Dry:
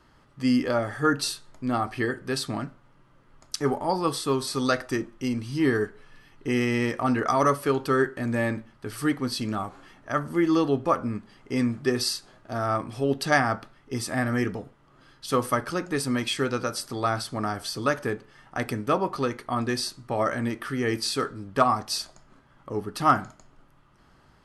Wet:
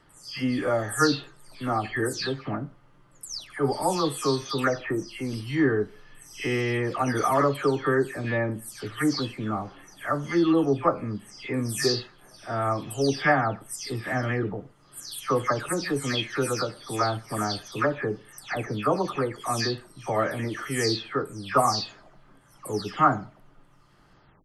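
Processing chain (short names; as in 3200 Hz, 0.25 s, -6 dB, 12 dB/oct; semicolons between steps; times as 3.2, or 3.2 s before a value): spectral delay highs early, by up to 0.305 s; gain +1 dB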